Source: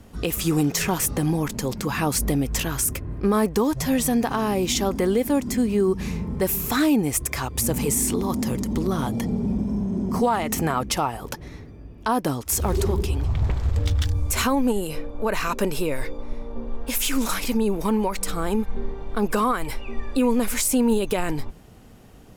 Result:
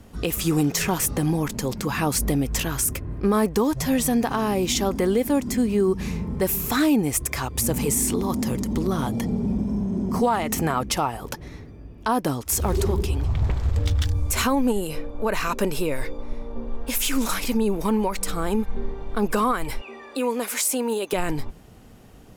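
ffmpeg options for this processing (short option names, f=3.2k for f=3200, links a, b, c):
-filter_complex "[0:a]asettb=1/sr,asplit=3[a][b][c];[a]atrim=end=19.814[d];[b]atrim=start=19.81:end=21.13,asetpts=PTS-STARTPTS,afade=t=in:d=0.004:c=qsin,afade=t=out:st=1.316:d=0.004:c=qsin,highpass=380[e];[c]atrim=start=21.126[f];[d][e]acrossfade=d=0.004:c1=hsin:c2=qsin[g];[g][f]acrossfade=d=0.004:c1=qsin:c2=hsin"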